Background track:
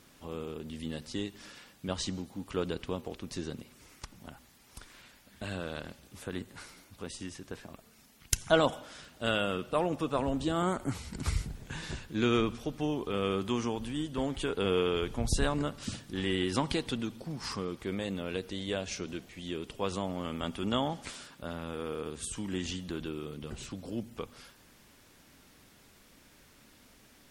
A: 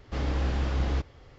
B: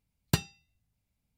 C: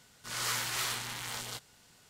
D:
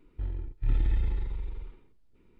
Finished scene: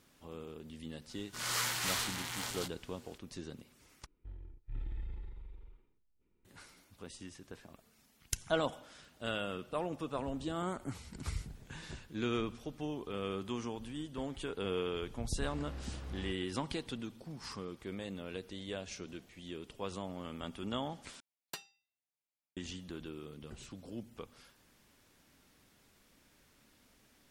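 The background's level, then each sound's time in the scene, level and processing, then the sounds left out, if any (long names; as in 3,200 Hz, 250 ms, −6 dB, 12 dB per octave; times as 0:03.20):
background track −7.5 dB
0:01.09: mix in C −1 dB
0:04.06: overwrite with D −15 dB
0:15.31: mix in A −17 dB
0:21.20: overwrite with B −11.5 dB + high-pass filter 560 Hz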